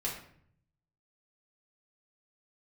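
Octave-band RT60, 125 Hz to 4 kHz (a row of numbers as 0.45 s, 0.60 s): 1.2 s, 0.85 s, 0.65 s, 0.55 s, 0.55 s, 0.45 s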